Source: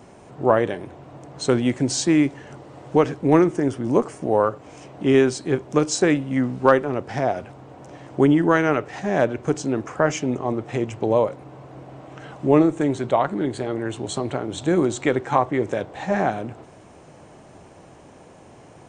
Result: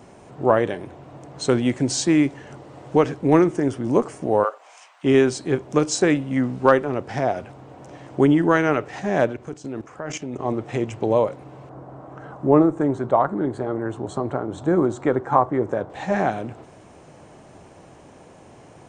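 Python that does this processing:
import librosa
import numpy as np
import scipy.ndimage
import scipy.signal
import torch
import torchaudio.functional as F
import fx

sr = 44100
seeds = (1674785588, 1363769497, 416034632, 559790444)

y = fx.highpass(x, sr, hz=fx.line((4.43, 480.0), (5.03, 1200.0)), slope=24, at=(4.43, 5.03), fade=0.02)
y = fx.level_steps(y, sr, step_db=15, at=(9.26, 10.39))
y = fx.high_shelf_res(y, sr, hz=1800.0, db=-10.5, q=1.5, at=(11.69, 15.9))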